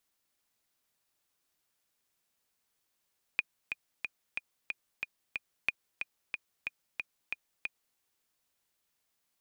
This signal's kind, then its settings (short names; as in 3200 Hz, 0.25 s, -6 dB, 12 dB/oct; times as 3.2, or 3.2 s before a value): metronome 183 bpm, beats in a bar 7, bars 2, 2450 Hz, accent 7 dB -14 dBFS